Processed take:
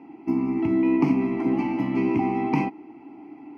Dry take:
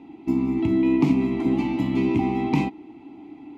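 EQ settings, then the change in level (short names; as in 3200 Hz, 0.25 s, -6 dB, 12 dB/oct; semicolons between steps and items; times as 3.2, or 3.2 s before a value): running mean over 12 samples; HPF 82 Hz; tilt +2.5 dB/oct; +3.5 dB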